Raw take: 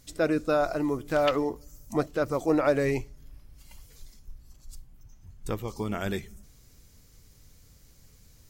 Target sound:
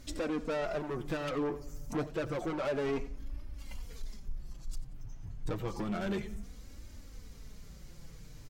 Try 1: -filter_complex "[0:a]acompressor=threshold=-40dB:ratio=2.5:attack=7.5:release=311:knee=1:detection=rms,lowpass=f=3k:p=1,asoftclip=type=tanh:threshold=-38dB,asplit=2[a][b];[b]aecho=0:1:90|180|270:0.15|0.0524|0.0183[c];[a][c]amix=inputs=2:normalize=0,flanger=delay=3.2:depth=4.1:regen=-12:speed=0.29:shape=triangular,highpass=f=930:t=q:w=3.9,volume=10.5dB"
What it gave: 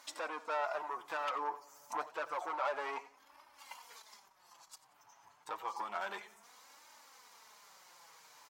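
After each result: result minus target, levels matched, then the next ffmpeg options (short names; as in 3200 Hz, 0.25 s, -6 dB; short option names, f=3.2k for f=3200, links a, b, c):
1000 Hz band +7.5 dB; compressor: peak gain reduction +4 dB
-filter_complex "[0:a]acompressor=threshold=-40dB:ratio=2.5:attack=7.5:release=311:knee=1:detection=rms,lowpass=f=3k:p=1,asoftclip=type=tanh:threshold=-38dB,asplit=2[a][b];[b]aecho=0:1:90|180|270:0.15|0.0524|0.0183[c];[a][c]amix=inputs=2:normalize=0,flanger=delay=3.2:depth=4.1:regen=-12:speed=0.29:shape=triangular,volume=10.5dB"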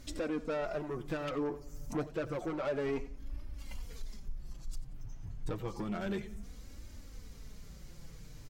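compressor: peak gain reduction +4 dB
-filter_complex "[0:a]acompressor=threshold=-33dB:ratio=2.5:attack=7.5:release=311:knee=1:detection=rms,lowpass=f=3k:p=1,asoftclip=type=tanh:threshold=-38dB,asplit=2[a][b];[b]aecho=0:1:90|180|270:0.15|0.0524|0.0183[c];[a][c]amix=inputs=2:normalize=0,flanger=delay=3.2:depth=4.1:regen=-12:speed=0.29:shape=triangular,volume=10.5dB"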